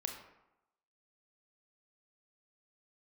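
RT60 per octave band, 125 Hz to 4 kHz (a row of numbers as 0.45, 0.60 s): 0.75, 0.85, 0.85, 0.95, 0.75, 0.50 s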